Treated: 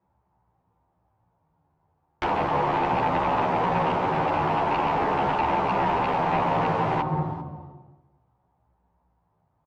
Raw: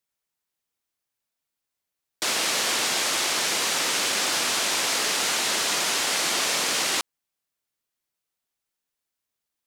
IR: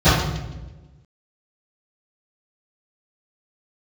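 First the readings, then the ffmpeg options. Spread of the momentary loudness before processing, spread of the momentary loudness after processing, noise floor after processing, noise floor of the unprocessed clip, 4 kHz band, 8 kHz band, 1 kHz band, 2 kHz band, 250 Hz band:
2 LU, 5 LU, −72 dBFS, −85 dBFS, −18.0 dB, below −35 dB, +9.5 dB, −6.0 dB, +9.5 dB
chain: -filter_complex "[0:a]asplit=2[link_01][link_02];[1:a]atrim=start_sample=2205,lowshelf=frequency=130:gain=8[link_03];[link_02][link_03]afir=irnorm=-1:irlink=0,volume=-34.5dB[link_04];[link_01][link_04]amix=inputs=2:normalize=0,acompressor=threshold=-33dB:ratio=12,lowpass=frequency=890:width_type=q:width=4.3,equalizer=frequency=120:width_type=o:width=2.9:gain=10.5,aecho=1:1:394:0.112,aeval=exprs='0.0944*sin(PI/2*2.82*val(0)/0.0944)':channel_layout=same,asplit=2[link_05][link_06];[link_06]adelay=11.9,afreqshift=-0.37[link_07];[link_05][link_07]amix=inputs=2:normalize=1,volume=4dB"

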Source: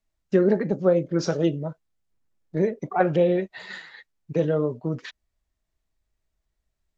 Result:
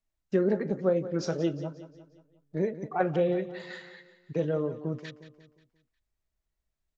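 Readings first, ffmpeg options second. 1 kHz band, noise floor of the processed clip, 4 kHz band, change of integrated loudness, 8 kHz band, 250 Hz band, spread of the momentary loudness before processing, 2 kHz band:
−6.0 dB, −84 dBFS, −6.0 dB, −6.0 dB, can't be measured, −6.0 dB, 15 LU, −6.0 dB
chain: -af "aecho=1:1:178|356|534|712|890:0.2|0.0958|0.046|0.0221|0.0106,volume=-6dB"

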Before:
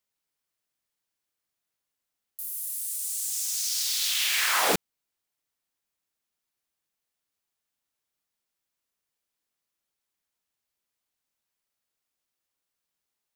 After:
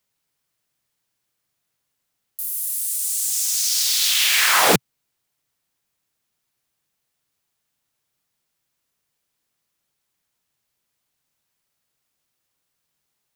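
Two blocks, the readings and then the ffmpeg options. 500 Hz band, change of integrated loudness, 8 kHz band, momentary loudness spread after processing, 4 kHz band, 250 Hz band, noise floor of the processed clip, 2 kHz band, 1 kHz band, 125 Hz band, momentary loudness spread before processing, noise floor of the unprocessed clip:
+8.5 dB, +8.0 dB, +8.0 dB, 9 LU, +8.0 dB, +10.0 dB, −77 dBFS, +8.0 dB, +8.0 dB, +12.5 dB, 9 LU, −85 dBFS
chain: -af "equalizer=frequency=130:width=1.6:gain=8,volume=8dB"

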